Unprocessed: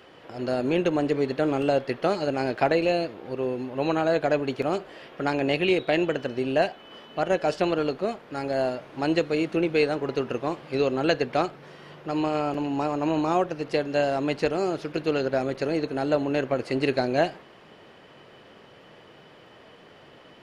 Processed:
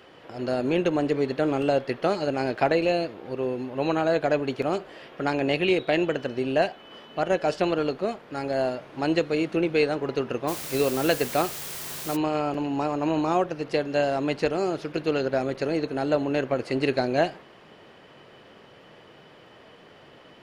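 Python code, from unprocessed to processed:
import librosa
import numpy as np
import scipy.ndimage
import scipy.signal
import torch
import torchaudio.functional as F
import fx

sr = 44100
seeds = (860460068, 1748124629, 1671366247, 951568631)

y = fx.quant_dither(x, sr, seeds[0], bits=6, dither='triangular', at=(10.47, 12.15), fade=0.02)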